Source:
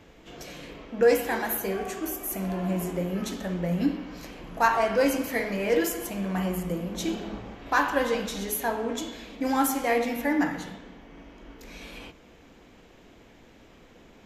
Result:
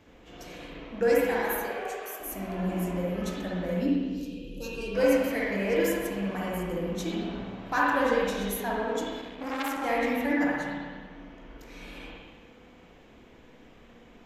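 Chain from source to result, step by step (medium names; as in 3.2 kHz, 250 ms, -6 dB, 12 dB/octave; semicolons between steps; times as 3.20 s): 1.61–2.20 s: elliptic high-pass 430 Hz; 3.77–4.95 s: time-frequency box 560–2400 Hz -29 dB; spring tank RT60 1.4 s, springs 56/60 ms, chirp 55 ms, DRR -4 dB; 9.21–9.83 s: transformer saturation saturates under 2.2 kHz; trim -5.5 dB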